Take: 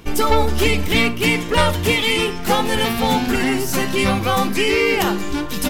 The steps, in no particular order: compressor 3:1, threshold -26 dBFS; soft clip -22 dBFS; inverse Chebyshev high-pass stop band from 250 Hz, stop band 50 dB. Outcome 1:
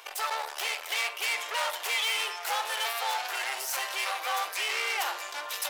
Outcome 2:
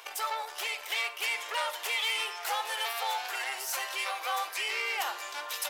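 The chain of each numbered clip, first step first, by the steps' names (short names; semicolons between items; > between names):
soft clip > compressor > inverse Chebyshev high-pass; compressor > soft clip > inverse Chebyshev high-pass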